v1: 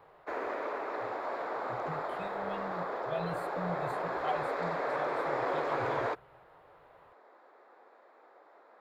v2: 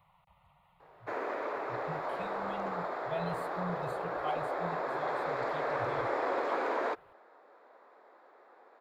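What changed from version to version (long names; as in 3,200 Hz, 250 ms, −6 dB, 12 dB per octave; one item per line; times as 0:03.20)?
background: entry +0.80 s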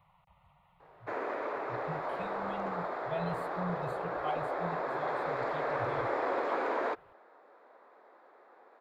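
master: add bass and treble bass +2 dB, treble −4 dB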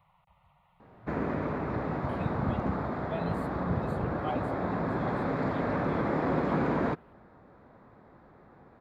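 background: remove high-pass filter 420 Hz 24 dB per octave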